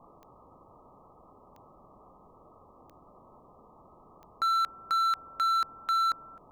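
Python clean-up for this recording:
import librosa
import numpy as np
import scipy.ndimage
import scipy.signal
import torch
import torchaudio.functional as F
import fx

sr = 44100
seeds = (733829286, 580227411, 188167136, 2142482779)

y = fx.fix_declip(x, sr, threshold_db=-24.5)
y = fx.fix_declick_ar(y, sr, threshold=10.0)
y = fx.noise_reduce(y, sr, print_start_s=2.28, print_end_s=2.78, reduce_db=18.0)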